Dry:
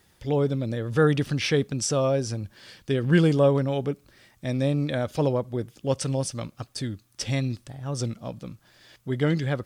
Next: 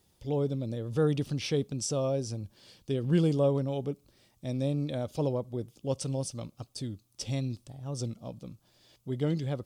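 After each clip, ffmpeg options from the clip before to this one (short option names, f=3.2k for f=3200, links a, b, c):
-af "equalizer=f=1.7k:t=o:w=0.97:g=-12,volume=-5.5dB"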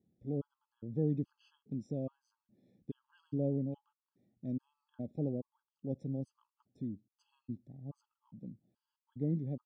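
-af "bandpass=f=220:t=q:w=2:csg=0,afftfilt=real='re*gt(sin(2*PI*1.2*pts/sr)*(1-2*mod(floor(b*sr/1024/850),2)),0)':imag='im*gt(sin(2*PI*1.2*pts/sr)*(1-2*mod(floor(b*sr/1024/850),2)),0)':win_size=1024:overlap=0.75,volume=1dB"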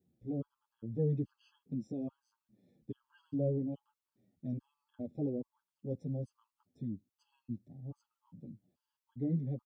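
-filter_complex "[0:a]asplit=2[a][b];[b]adelay=8,afreqshift=-3[c];[a][c]amix=inputs=2:normalize=1,volume=3dB"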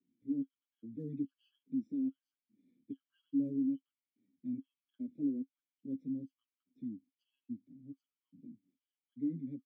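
-filter_complex "[0:a]asplit=3[a][b][c];[a]bandpass=f=270:t=q:w=8,volume=0dB[d];[b]bandpass=f=2.29k:t=q:w=8,volume=-6dB[e];[c]bandpass=f=3.01k:t=q:w=8,volume=-9dB[f];[d][e][f]amix=inputs=3:normalize=0,acrossover=split=100|240|760[g][h][i][j];[j]acrusher=bits=5:mode=log:mix=0:aa=0.000001[k];[g][h][i][k]amix=inputs=4:normalize=0,volume=6dB"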